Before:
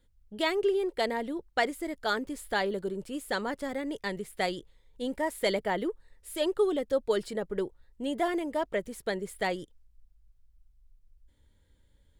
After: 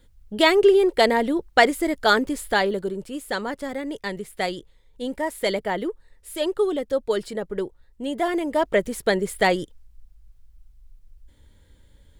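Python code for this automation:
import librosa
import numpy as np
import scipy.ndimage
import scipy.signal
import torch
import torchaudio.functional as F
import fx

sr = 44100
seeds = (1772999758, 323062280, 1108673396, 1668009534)

y = fx.gain(x, sr, db=fx.line((2.17, 11.5), (3.1, 4.0), (8.16, 4.0), (8.79, 11.0)))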